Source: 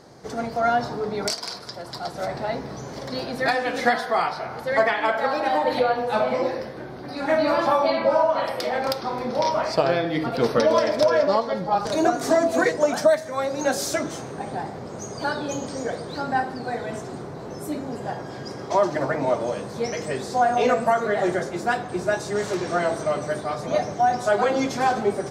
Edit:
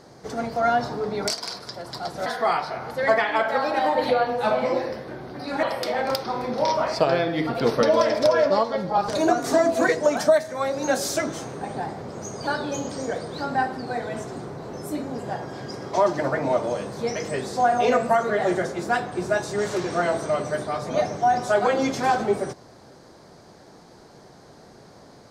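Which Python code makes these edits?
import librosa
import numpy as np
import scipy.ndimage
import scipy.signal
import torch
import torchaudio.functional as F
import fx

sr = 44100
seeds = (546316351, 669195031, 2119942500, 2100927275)

y = fx.edit(x, sr, fx.cut(start_s=2.26, length_s=1.69),
    fx.cut(start_s=7.32, length_s=1.08), tone=tone)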